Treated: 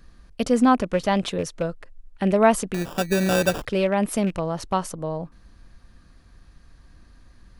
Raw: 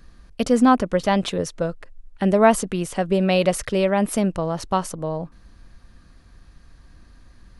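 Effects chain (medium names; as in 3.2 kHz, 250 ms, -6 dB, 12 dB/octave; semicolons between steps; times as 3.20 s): rattle on loud lows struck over -26 dBFS, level -26 dBFS; 2.74–3.66 s: sample-rate reducer 2.1 kHz, jitter 0%; trim -2 dB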